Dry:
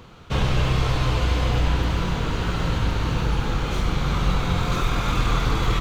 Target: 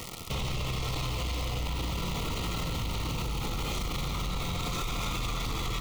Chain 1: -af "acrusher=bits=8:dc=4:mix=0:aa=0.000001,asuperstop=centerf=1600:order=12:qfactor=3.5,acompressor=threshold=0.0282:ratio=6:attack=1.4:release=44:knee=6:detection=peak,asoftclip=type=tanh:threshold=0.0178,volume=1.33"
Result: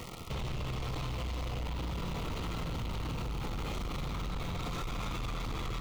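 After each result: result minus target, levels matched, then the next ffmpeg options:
8 kHz band -6.0 dB; saturation: distortion +8 dB
-af "acrusher=bits=8:dc=4:mix=0:aa=0.000001,asuperstop=centerf=1600:order=12:qfactor=3.5,acompressor=threshold=0.0282:ratio=6:attack=1.4:release=44:knee=6:detection=peak,highshelf=f=3100:g=10,asoftclip=type=tanh:threshold=0.0178,volume=1.33"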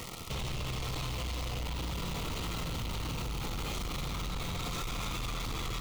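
saturation: distortion +9 dB
-af "acrusher=bits=8:dc=4:mix=0:aa=0.000001,asuperstop=centerf=1600:order=12:qfactor=3.5,acompressor=threshold=0.0282:ratio=6:attack=1.4:release=44:knee=6:detection=peak,highshelf=f=3100:g=10,asoftclip=type=tanh:threshold=0.0447,volume=1.33"

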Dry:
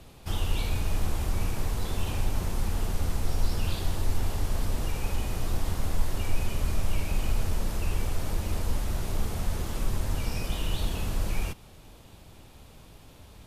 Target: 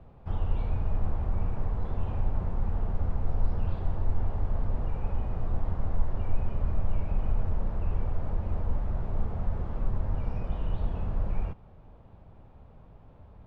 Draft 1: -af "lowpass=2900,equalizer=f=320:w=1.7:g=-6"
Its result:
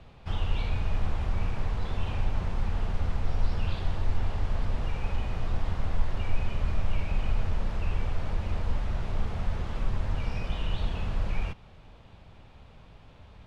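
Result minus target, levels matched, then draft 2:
4 kHz band +16.0 dB
-af "lowpass=1000,equalizer=f=320:w=1.7:g=-6"

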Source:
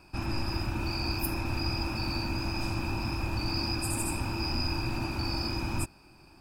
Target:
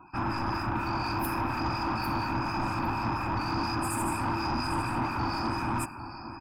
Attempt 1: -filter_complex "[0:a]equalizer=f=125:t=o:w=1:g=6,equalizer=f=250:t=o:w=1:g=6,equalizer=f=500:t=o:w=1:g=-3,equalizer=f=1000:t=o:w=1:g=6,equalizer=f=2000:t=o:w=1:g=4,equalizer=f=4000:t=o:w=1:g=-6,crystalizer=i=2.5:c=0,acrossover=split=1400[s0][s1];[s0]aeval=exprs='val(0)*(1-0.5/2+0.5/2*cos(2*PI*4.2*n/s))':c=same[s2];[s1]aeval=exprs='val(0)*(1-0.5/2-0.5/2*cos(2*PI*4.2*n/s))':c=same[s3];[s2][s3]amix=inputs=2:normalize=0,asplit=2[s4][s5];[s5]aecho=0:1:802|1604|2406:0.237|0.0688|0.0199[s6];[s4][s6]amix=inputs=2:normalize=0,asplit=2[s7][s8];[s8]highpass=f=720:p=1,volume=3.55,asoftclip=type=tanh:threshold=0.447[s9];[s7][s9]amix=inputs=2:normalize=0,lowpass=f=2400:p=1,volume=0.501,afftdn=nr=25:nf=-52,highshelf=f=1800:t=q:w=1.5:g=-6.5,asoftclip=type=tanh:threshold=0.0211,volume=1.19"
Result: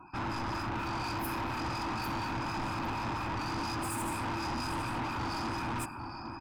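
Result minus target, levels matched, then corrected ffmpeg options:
saturation: distortion +10 dB
-filter_complex "[0:a]equalizer=f=125:t=o:w=1:g=6,equalizer=f=250:t=o:w=1:g=6,equalizer=f=500:t=o:w=1:g=-3,equalizer=f=1000:t=o:w=1:g=6,equalizer=f=2000:t=o:w=1:g=4,equalizer=f=4000:t=o:w=1:g=-6,crystalizer=i=2.5:c=0,acrossover=split=1400[s0][s1];[s0]aeval=exprs='val(0)*(1-0.5/2+0.5/2*cos(2*PI*4.2*n/s))':c=same[s2];[s1]aeval=exprs='val(0)*(1-0.5/2-0.5/2*cos(2*PI*4.2*n/s))':c=same[s3];[s2][s3]amix=inputs=2:normalize=0,asplit=2[s4][s5];[s5]aecho=0:1:802|1604|2406:0.237|0.0688|0.0199[s6];[s4][s6]amix=inputs=2:normalize=0,asplit=2[s7][s8];[s8]highpass=f=720:p=1,volume=3.55,asoftclip=type=tanh:threshold=0.447[s9];[s7][s9]amix=inputs=2:normalize=0,lowpass=f=2400:p=1,volume=0.501,afftdn=nr=25:nf=-52,highshelf=f=1800:t=q:w=1.5:g=-6.5,asoftclip=type=tanh:threshold=0.0668,volume=1.19"

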